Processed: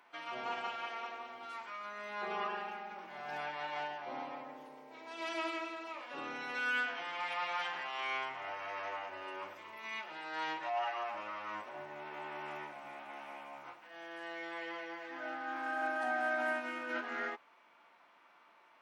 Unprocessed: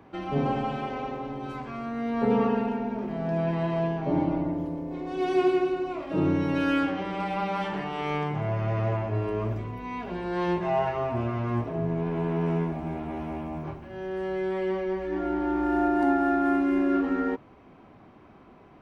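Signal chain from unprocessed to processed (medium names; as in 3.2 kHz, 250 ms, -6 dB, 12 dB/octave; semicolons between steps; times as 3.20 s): high-pass 1.2 kHz 12 dB/octave; formant-preserving pitch shift -2 st; trim -1 dB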